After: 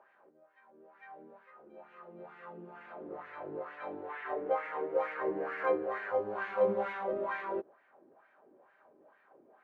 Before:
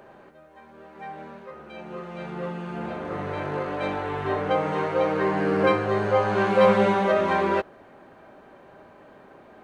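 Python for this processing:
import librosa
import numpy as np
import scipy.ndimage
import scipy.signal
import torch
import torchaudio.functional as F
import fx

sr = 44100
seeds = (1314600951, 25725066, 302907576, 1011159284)

p1 = fx.graphic_eq(x, sr, hz=(125, 500, 2000), db=(-10, 4, 6), at=(4.09, 6.12))
p2 = fx.schmitt(p1, sr, flips_db=-15.0)
p3 = p1 + (p2 * 10.0 ** (-10.0 / 20.0))
p4 = fx.wah_lfo(p3, sr, hz=2.2, low_hz=320.0, high_hz=2000.0, q=2.4)
y = p4 * 10.0 ** (-7.0 / 20.0)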